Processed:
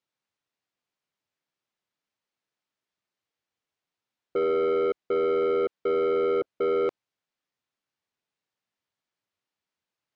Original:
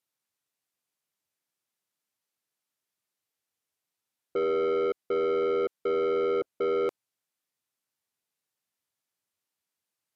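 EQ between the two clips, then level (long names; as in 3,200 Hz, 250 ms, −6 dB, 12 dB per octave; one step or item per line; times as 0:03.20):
high-frequency loss of the air 120 metres
+2.5 dB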